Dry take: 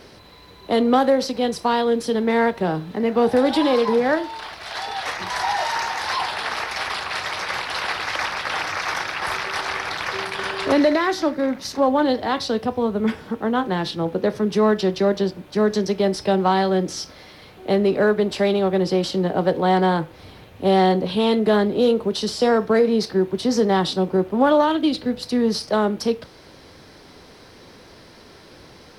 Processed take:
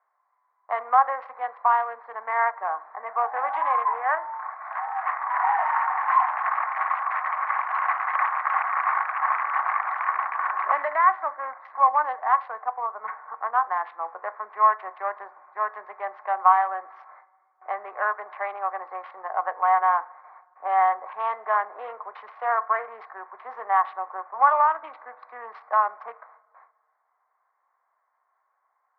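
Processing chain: local Wiener filter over 15 samples; gate with hold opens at -35 dBFS; elliptic band-pass 730–2100 Hz, stop band 70 dB; peaking EQ 1.1 kHz +12.5 dB 0.23 oct; on a send: reverberation RT60 1.8 s, pre-delay 5 ms, DRR 23 dB

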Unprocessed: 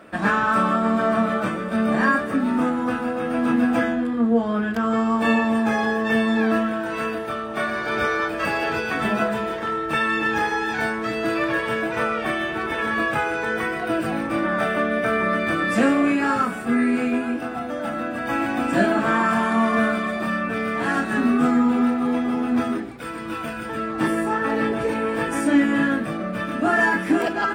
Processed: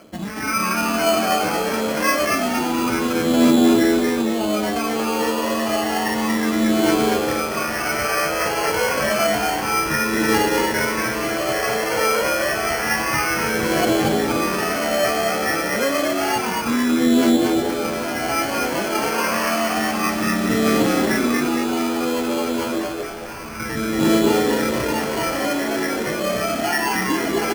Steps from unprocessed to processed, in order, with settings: low-pass 1.8 kHz 12 dB/octave; peak limiter -17.5 dBFS, peak gain reduction 9.5 dB; level rider gain up to 9 dB; 22.96–23.60 s: hard clipper -27 dBFS, distortion -26 dB; phaser 0.29 Hz, delay 2.3 ms, feedback 62%; sample-and-hold 12×; on a send: frequency-shifting echo 232 ms, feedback 41%, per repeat +87 Hz, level -3 dB; on the sum: trim -7 dB

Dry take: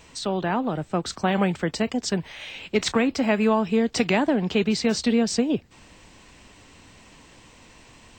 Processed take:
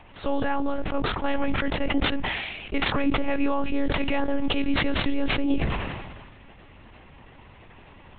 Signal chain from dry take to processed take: median filter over 9 samples; peak limiter -17.5 dBFS, peak gain reduction 7 dB; monotone LPC vocoder at 8 kHz 280 Hz; decay stretcher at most 36 dB/s; trim +2.5 dB

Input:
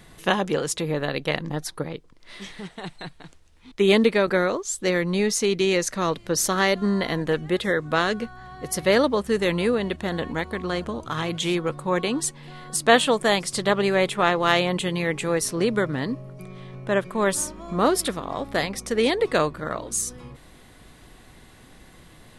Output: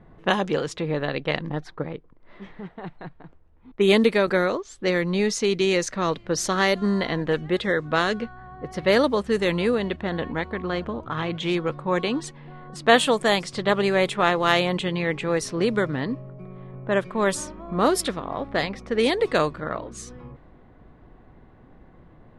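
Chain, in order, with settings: level-controlled noise filter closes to 970 Hz, open at -16 dBFS

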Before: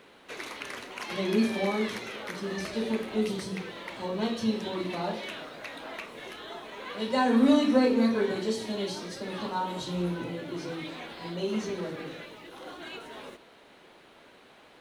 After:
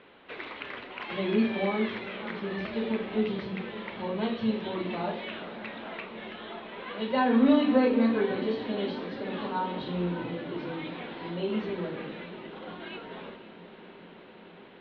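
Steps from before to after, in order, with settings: steep low-pass 3.6 kHz 36 dB/octave; echo that smears into a reverb 528 ms, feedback 78%, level -15.5 dB

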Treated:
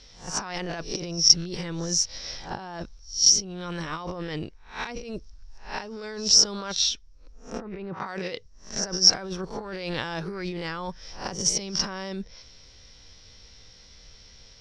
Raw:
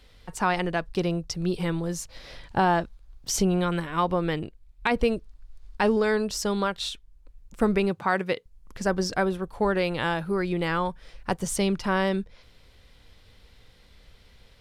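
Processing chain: reverse spectral sustain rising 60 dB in 0.34 s; 6.73–8.06 s: low-pass that closes with the level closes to 1.8 kHz, closed at -20 dBFS; compressor with a negative ratio -29 dBFS, ratio -1; resonant low-pass 5.6 kHz, resonance Q 13; trim -4.5 dB

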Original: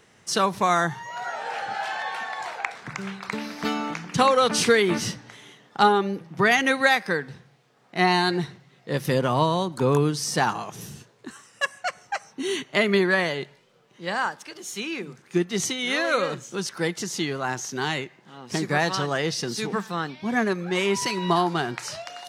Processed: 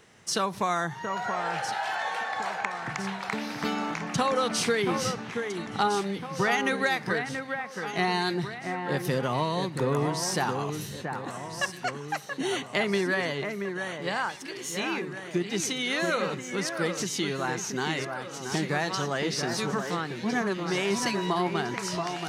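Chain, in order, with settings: compression 2:1, threshold -28 dBFS, peak gain reduction 8.5 dB; on a send: echo whose repeats swap between lows and highs 679 ms, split 2.3 kHz, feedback 69%, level -6 dB

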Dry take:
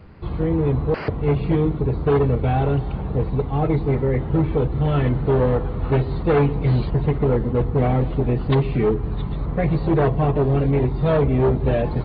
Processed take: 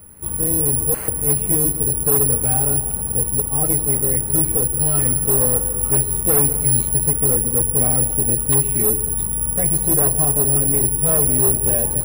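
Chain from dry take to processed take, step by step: on a send at -14 dB: reverberation RT60 1.5 s, pre-delay 137 ms; on the sum: careless resampling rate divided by 4×, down none, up zero stuff; trim -5 dB

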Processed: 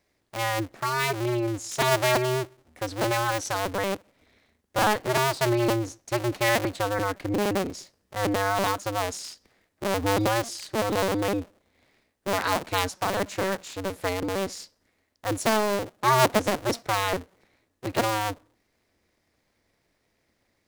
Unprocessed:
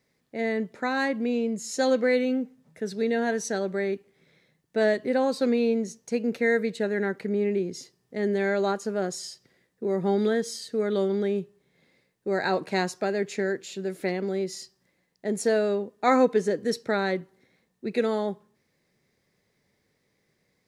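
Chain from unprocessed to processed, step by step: cycle switcher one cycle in 2, inverted

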